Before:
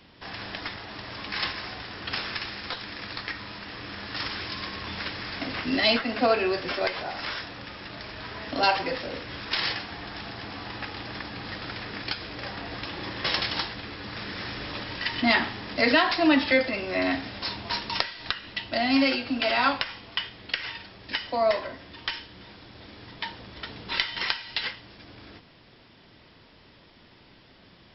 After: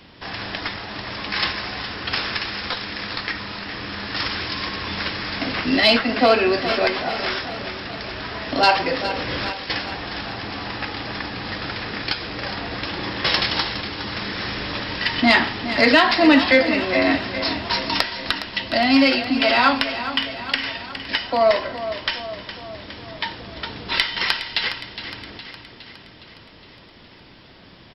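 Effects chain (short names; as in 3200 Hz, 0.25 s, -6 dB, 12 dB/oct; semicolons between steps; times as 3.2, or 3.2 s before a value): 9.07–9.7 negative-ratio compressor -37 dBFS, ratio -1; soft clip -7.5 dBFS, distortion -27 dB; feedback echo 0.413 s, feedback 58%, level -11.5 dB; gain +7 dB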